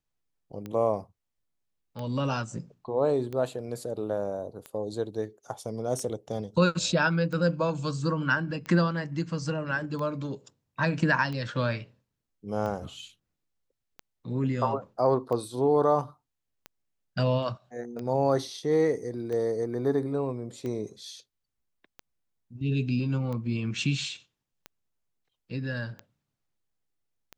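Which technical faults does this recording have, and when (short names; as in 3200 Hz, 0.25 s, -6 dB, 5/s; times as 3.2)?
tick 45 rpm -24 dBFS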